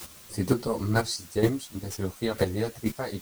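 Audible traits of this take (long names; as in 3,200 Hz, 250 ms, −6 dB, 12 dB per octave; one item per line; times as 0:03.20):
a quantiser's noise floor 8 bits, dither triangular
chopped level 2.1 Hz, depth 65%, duty 10%
a shimmering, thickened sound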